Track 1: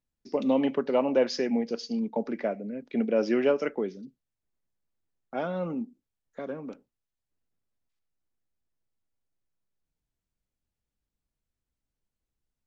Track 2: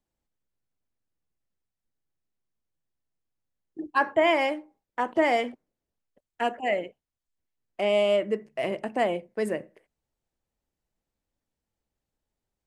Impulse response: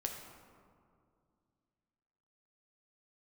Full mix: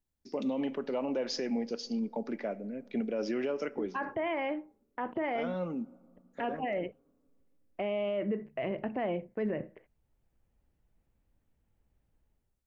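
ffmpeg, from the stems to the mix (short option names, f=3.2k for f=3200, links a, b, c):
-filter_complex "[0:a]highshelf=f=7.2k:g=6,volume=-4.5dB,asplit=2[a][b];[b]volume=-18.5dB[c];[1:a]lowpass=f=2.9k:w=0.5412,lowpass=f=2.9k:w=1.3066,lowshelf=f=200:g=11.5,dynaudnorm=f=190:g=5:m=16dB,volume=-12dB[d];[2:a]atrim=start_sample=2205[e];[c][e]afir=irnorm=-1:irlink=0[f];[a][d][f]amix=inputs=3:normalize=0,alimiter=level_in=0.5dB:limit=-24dB:level=0:latency=1:release=56,volume=-0.5dB"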